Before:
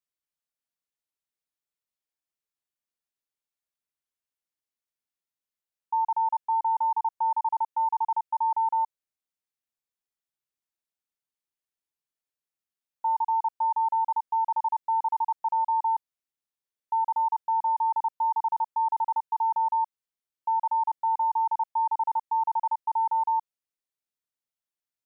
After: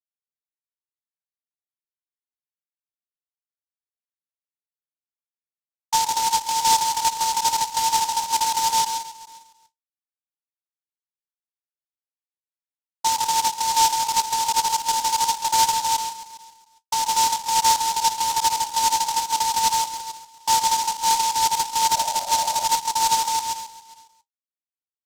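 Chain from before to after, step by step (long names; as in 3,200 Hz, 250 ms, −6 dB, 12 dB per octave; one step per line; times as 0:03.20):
noise gate with hold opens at −27 dBFS
parametric band 940 Hz +15 dB 2.2 octaves
repeating echo 136 ms, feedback 51%, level −8.5 dB
0:21.94–0:22.66: noise in a band 560–840 Hz −27 dBFS
flanger 0.17 Hz, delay 8.8 ms, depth 8.1 ms, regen +54%
short delay modulated by noise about 5,400 Hz, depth 0.1 ms
level −6 dB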